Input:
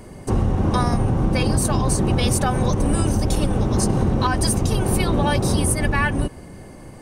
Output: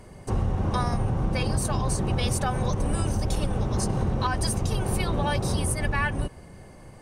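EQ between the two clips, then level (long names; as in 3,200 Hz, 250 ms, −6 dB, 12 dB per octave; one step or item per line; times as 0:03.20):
parametric band 280 Hz −6 dB 0.93 octaves
high-shelf EQ 11,000 Hz −6.5 dB
−5.0 dB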